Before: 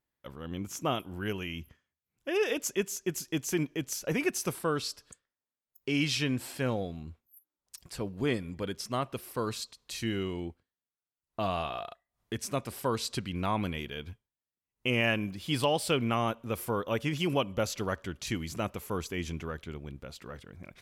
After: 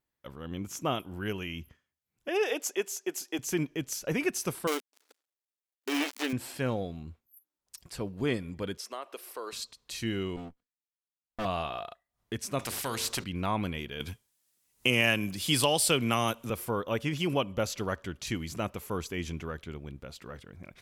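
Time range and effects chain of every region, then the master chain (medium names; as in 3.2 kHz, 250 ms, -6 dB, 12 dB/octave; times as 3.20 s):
2.28–3.39 s: high-pass 300 Hz 24 dB/octave + peaking EQ 770 Hz +8 dB 0.25 oct
4.67–6.33 s: dead-time distortion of 0.28 ms + brick-wall FIR high-pass 250 Hz + treble shelf 3.4 kHz +7 dB
8.77–9.53 s: high-pass 370 Hz 24 dB/octave + compression 2.5:1, threshold -36 dBFS
10.36–11.45 s: comb filter that takes the minimum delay 4.1 ms + upward expansion, over -54 dBFS
12.59–13.24 s: hum notches 50/100/150/200/250/300/350/400/450/500 Hz + spectrum-flattening compressor 2:1
14.00–16.50 s: peaking EQ 10 kHz +13 dB 2.3 oct + three bands compressed up and down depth 40%
whole clip: none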